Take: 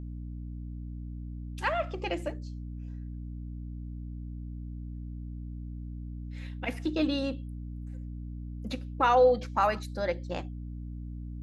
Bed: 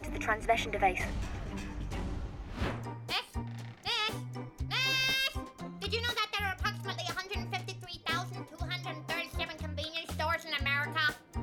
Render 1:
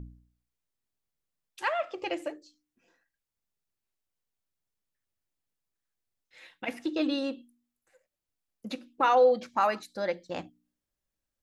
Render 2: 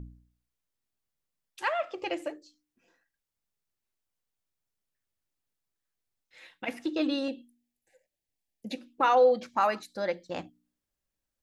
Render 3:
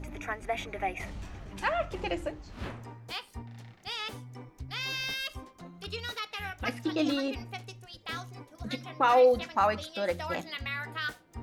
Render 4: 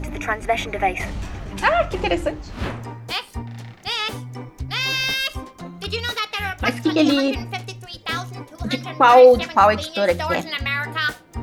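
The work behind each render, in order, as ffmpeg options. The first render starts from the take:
-af "bandreject=f=60:t=h:w=4,bandreject=f=120:t=h:w=4,bandreject=f=180:t=h:w=4,bandreject=f=240:t=h:w=4,bandreject=f=300:t=h:w=4"
-filter_complex "[0:a]asettb=1/sr,asplit=3[s0][s1][s2];[s0]atrim=end=7.284[s3];[s1]atrim=start=7.28:end=8.77,asetpts=PTS-STARTPTS,afade=t=in:d=0.004:c=qsin,afade=t=out:st=1.486:d=0.004:c=qsin,asuperstop=centerf=1200:order=8:qfactor=1.7[s4];[s2]atrim=start=8.766[s5];[s3][s4]acrossfade=d=0.004:c1=hsin:c2=qsin[s6];[s6][s5]acrossfade=d=0.004:c1=qsin:c2=hsin"
-filter_complex "[1:a]volume=0.596[s0];[0:a][s0]amix=inputs=2:normalize=0"
-af "volume=3.98,alimiter=limit=0.794:level=0:latency=1"

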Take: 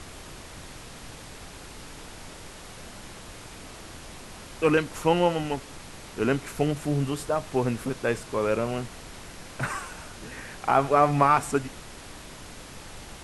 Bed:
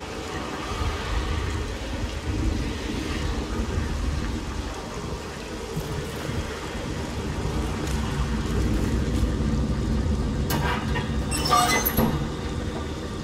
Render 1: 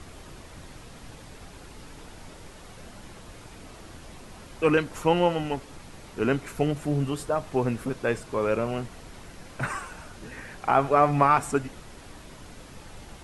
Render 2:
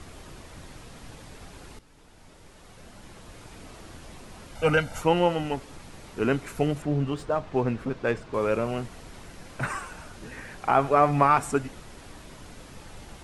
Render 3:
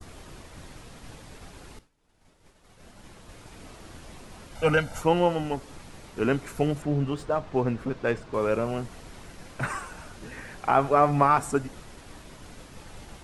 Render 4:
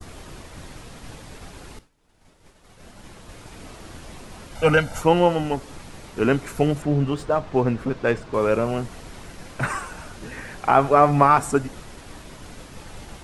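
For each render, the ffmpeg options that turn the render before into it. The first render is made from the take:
-af "afftdn=nr=6:nf=-44"
-filter_complex "[0:a]asettb=1/sr,asplit=3[s0][s1][s2];[s0]atrim=end=4.554[s3];[s1]atrim=start=4.55:end=5.01,asetpts=PTS-STARTPTS,afade=t=in:d=0.004:c=qsin,afade=t=out:st=0.456:d=0.004:c=qsin,aecho=1:1:1.4:0.85,atrim=end_sample=20286[s4];[s2]atrim=start=5.006[s5];[s3][s4]acrossfade=d=0.004:c1=hsin:c2=qsin[s6];[s6][s5]acrossfade=d=0.004:c1=qsin:c2=hsin,asettb=1/sr,asplit=3[s7][s8][s9];[s7]atrim=end=6.824[s10];[s8]atrim=start=6.82:end=8.34,asetpts=PTS-STARTPTS,afade=t=in:d=0.004:c=qsin,afade=t=out:st=1.516:d=0.004:c=qsin,adynamicsmooth=sensitivity=5.5:basefreq=4300[s11];[s9]atrim=start=8.336[s12];[s10][s11]acrossfade=d=0.004:c1=hsin:c2=qsin[s13];[s13][s12]acrossfade=d=0.004:c1=qsin:c2=hsin,asplit=2[s14][s15];[s14]atrim=end=1.79,asetpts=PTS-STARTPTS,afade=t=out:st=1.786:d=0.004:c=hsin:silence=0.199526[s16];[s15]atrim=start=1.79,asetpts=PTS-STARTPTS,afade=t=in:d=1.79:silence=0.199526[s17];[s16][s17]concat=n=2:v=0:a=1"
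-af "agate=range=0.0224:threshold=0.00708:ratio=3:detection=peak,adynamicequalizer=threshold=0.00562:dfrequency=2500:dqfactor=1.3:tfrequency=2500:tqfactor=1.3:attack=5:release=100:ratio=0.375:range=2.5:mode=cutabove:tftype=bell"
-af "volume=1.78"

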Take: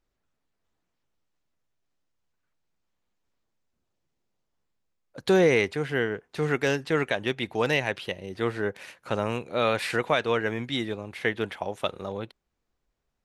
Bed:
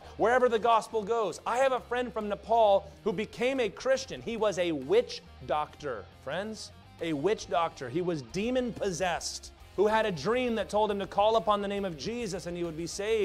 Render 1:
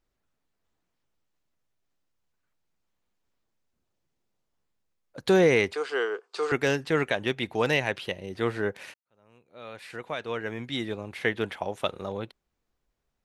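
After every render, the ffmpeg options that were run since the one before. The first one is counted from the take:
-filter_complex "[0:a]asettb=1/sr,asplit=3[s0][s1][s2];[s0]atrim=end=5.744[s3];[s1]atrim=start=5.74:end=6.52,asetpts=PTS-STARTPTS,afade=t=in:d=0.004:c=qsin,afade=t=out:st=0.776:d=0.004:c=qsin,highpass=f=400:w=0.5412,highpass=f=400:w=1.3066,equalizer=f=410:t=q:w=4:g=4,equalizer=f=610:t=q:w=4:g=-5,equalizer=f=1200:t=q:w=4:g=9,equalizer=f=1900:t=q:w=4:g=-8,equalizer=f=4700:t=q:w=4:g=10,equalizer=f=7900:t=q:w=4:g=6,lowpass=f=9100:w=0.5412,lowpass=f=9100:w=1.3066[s4];[s2]atrim=start=6.516[s5];[s3][s4]acrossfade=d=0.004:c1=hsin:c2=qsin[s6];[s6][s5]acrossfade=d=0.004:c1=qsin:c2=hsin,asplit=2[s7][s8];[s7]atrim=end=8.94,asetpts=PTS-STARTPTS,afade=t=out:st=8.936:d=0.004:c=hsin[s9];[s8]atrim=start=8.94,asetpts=PTS-STARTPTS,afade=t=in:d=2.09:c=qua[s10];[s9][s10]concat=n=2:v=0:a=1"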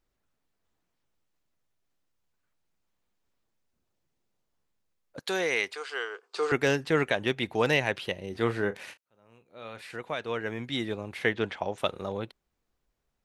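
-filter_complex "[0:a]asettb=1/sr,asplit=3[s0][s1][s2];[s0]atrim=end=5.194[s3];[s1]atrim=start=5.19:end=6.23,asetpts=PTS-STARTPTS,afade=t=in:d=0.004:c=qsin,afade=t=out:st=1.036:d=0.004:c=qsin,highpass=f=1400:p=1[s4];[s2]atrim=start=6.226[s5];[s3][s4]acrossfade=d=0.004:c1=hsin:c2=qsin[s6];[s6][s5]acrossfade=d=0.004:c1=qsin:c2=hsin,asettb=1/sr,asplit=3[s7][s8][s9];[s7]atrim=end=8.294[s10];[s8]atrim=start=8.29:end=9.82,asetpts=PTS-STARTPTS,afade=t=in:d=0.004:c=qsin,afade=t=out:st=1.526:d=0.004:c=qsin,asplit=2[s11][s12];[s12]adelay=35,volume=0.251[s13];[s11][s13]amix=inputs=2:normalize=0,atrim=end_sample=67473[s14];[s9]atrim=start=9.816[s15];[s10][s14]acrossfade=d=0.004:c1=hsin:c2=qsin[s16];[s16][s15]acrossfade=d=0.004:c1=qsin:c2=hsin,asettb=1/sr,asplit=3[s17][s18][s19];[s17]atrim=end=11.334[s20];[s18]atrim=start=11.33:end=11.78,asetpts=PTS-STARTPTS,afade=t=in:d=0.004:c=qsin,afade=t=out:st=0.446:d=0.004:c=qsin,lowpass=f=7100:w=0.5412,lowpass=f=7100:w=1.3066[s21];[s19]atrim=start=11.776[s22];[s20][s21]acrossfade=d=0.004:c1=hsin:c2=qsin[s23];[s23][s22]acrossfade=d=0.004:c1=qsin:c2=hsin"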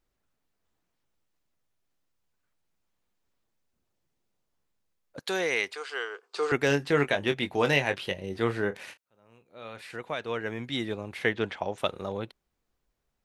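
-filter_complex "[0:a]asettb=1/sr,asplit=3[s0][s1][s2];[s0]atrim=end=6.684[s3];[s1]atrim=start=6.68:end=8.4,asetpts=PTS-STARTPTS,afade=t=in:d=0.004:c=qsin,afade=t=out:st=1.716:d=0.004:c=qsin,asplit=2[s4][s5];[s5]adelay=21,volume=0.398[s6];[s4][s6]amix=inputs=2:normalize=0,atrim=end_sample=75852[s7];[s2]atrim=start=8.396[s8];[s3][s7]acrossfade=d=0.004:c1=hsin:c2=qsin[s9];[s9][s8]acrossfade=d=0.004:c1=qsin:c2=hsin"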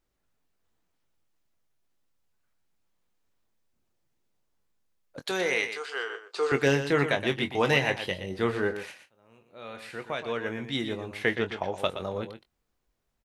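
-filter_complex "[0:a]asplit=2[s0][s1];[s1]adelay=22,volume=0.299[s2];[s0][s2]amix=inputs=2:normalize=0,asplit=2[s3][s4];[s4]aecho=0:1:120:0.316[s5];[s3][s5]amix=inputs=2:normalize=0"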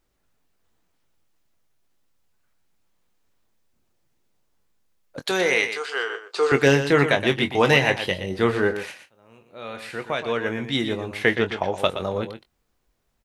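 -af "volume=2.11,alimiter=limit=0.708:level=0:latency=1"

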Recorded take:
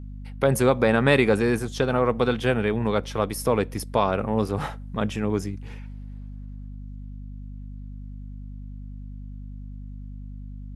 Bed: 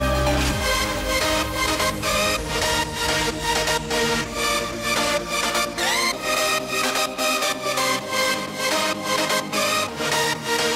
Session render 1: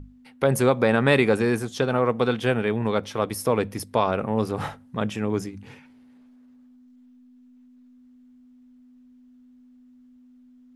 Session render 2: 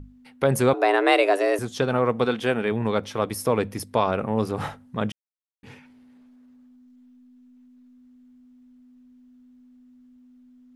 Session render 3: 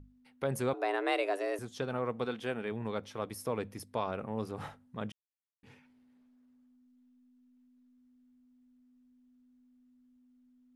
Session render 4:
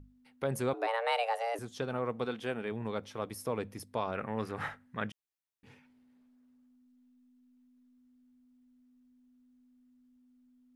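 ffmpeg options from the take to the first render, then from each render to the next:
-af "bandreject=f=50:t=h:w=6,bandreject=f=100:t=h:w=6,bandreject=f=150:t=h:w=6,bandreject=f=200:t=h:w=6"
-filter_complex "[0:a]asettb=1/sr,asplit=3[s0][s1][s2];[s0]atrim=end=0.734[s3];[s1]atrim=start=0.73:end=1.59,asetpts=PTS-STARTPTS,afade=t=in:d=0.004:c=qsin,afade=t=out:st=0.856:d=0.004:c=qsin,afreqshift=190[s4];[s2]atrim=start=1.586[s5];[s3][s4]acrossfade=d=0.004:c1=hsin:c2=qsin[s6];[s6][s5]acrossfade=d=0.004:c1=qsin:c2=hsin,asettb=1/sr,asplit=3[s7][s8][s9];[s7]atrim=end=2.244[s10];[s8]atrim=start=2.24:end=2.72,asetpts=PTS-STARTPTS,afade=t=in:d=0.004:c=qsin,afade=t=out:st=0.476:d=0.004:c=qsin,equalizer=f=110:t=o:w=0.77:g=-8.5[s11];[s9]atrim=start=2.716[s12];[s10][s11]acrossfade=d=0.004:c1=hsin:c2=qsin[s13];[s13][s12]acrossfade=d=0.004:c1=qsin:c2=hsin,asplit=3[s14][s15][s16];[s14]atrim=end=5.12,asetpts=PTS-STARTPTS,afade=t=out:st=5.116:d=0.004:c=hsin[s17];[s15]atrim=start=5.12:end=5.63,asetpts=PTS-STARTPTS,volume=0[s18];[s16]atrim=start=5.63,asetpts=PTS-STARTPTS,afade=t=in:d=0.004:c=hsin[s19];[s17][s18][s19]concat=n=3:v=0:a=1"
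-af "volume=0.237"
-filter_complex "[0:a]asplit=3[s0][s1][s2];[s0]afade=t=out:st=0.86:d=0.02[s3];[s1]afreqshift=150,afade=t=in:st=0.86:d=0.02,afade=t=out:st=1.54:d=0.02[s4];[s2]afade=t=in:st=1.54:d=0.02[s5];[s3][s4][s5]amix=inputs=3:normalize=0,asettb=1/sr,asplit=3[s6][s7][s8];[s6]atrim=end=4.154[s9];[s7]atrim=start=4.15:end=5.09,asetpts=PTS-STARTPTS,afade=t=in:d=0.004:c=qsin,afade=t=out:st=0.936:d=0.004:c=qsin,equalizer=f=1800:w=1.4:g=14[s10];[s8]atrim=start=5.086[s11];[s9][s10]acrossfade=d=0.004:c1=hsin:c2=qsin[s12];[s12][s11]acrossfade=d=0.004:c1=qsin:c2=hsin"

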